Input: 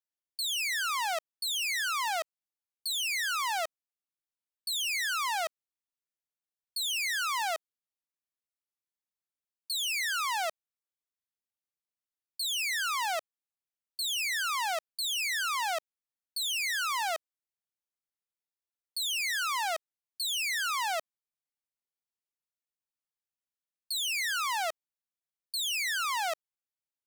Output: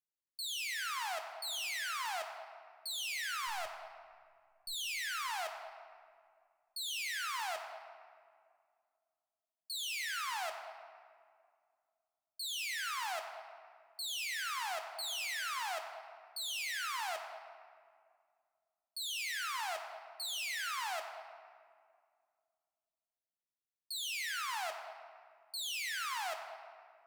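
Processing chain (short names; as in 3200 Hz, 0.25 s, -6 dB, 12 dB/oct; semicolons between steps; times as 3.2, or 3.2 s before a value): 3.47–4.73 half-wave gain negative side -3 dB; on a send: reverb RT60 2.1 s, pre-delay 6 ms, DRR 4 dB; on the sum: gain -8.5 dB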